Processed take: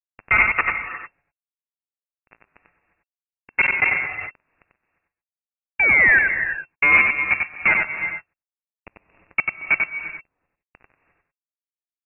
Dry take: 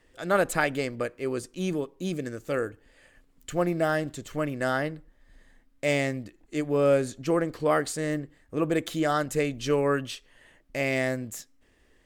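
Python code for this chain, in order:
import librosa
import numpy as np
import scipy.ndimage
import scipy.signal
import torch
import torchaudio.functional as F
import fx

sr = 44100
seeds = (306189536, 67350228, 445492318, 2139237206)

y = fx.highpass(x, sr, hz=200.0, slope=6)
y = fx.transient(y, sr, attack_db=2, sustain_db=8)
y = fx.level_steps(y, sr, step_db=22)
y = fx.spec_paint(y, sr, seeds[0], shape='rise', start_s=5.79, length_s=0.4, low_hz=350.0, high_hz=1200.0, level_db=-25.0)
y = np.sign(y) * np.maximum(np.abs(y) - 10.0 ** (-37.0 / 20.0), 0.0)
y = fx.tremolo_random(y, sr, seeds[1], hz=3.5, depth_pct=75)
y = fx.fuzz(y, sr, gain_db=42.0, gate_db=-46.0)
y = y + 10.0 ** (-4.0 / 20.0) * np.pad(y, (int(93 * sr / 1000.0), 0))[:len(y)]
y = fx.rev_gated(y, sr, seeds[2], gate_ms=380, shape='rising', drr_db=9.0)
y = fx.freq_invert(y, sr, carrier_hz=2700)
y = fx.sustainer(y, sr, db_per_s=60.0, at=(3.55, 4.3))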